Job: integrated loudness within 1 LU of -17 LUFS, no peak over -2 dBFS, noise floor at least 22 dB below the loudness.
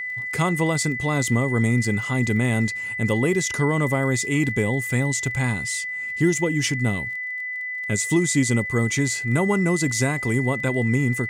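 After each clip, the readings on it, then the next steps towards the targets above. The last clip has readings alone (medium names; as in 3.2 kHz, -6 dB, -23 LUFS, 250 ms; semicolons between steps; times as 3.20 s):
tick rate 23 per s; steady tone 2 kHz; tone level -27 dBFS; loudness -22.0 LUFS; peak level -8.5 dBFS; loudness target -17.0 LUFS
-> de-click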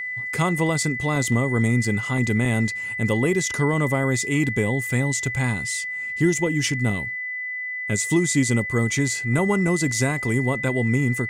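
tick rate 0.18 per s; steady tone 2 kHz; tone level -27 dBFS
-> band-stop 2 kHz, Q 30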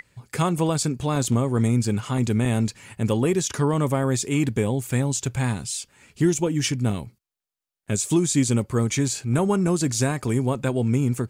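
steady tone not found; loudness -23.5 LUFS; peak level -9.0 dBFS; loudness target -17.0 LUFS
-> trim +6.5 dB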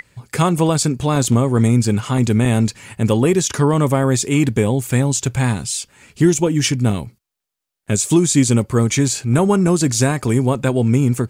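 loudness -17.0 LUFS; peak level -2.5 dBFS; noise floor -82 dBFS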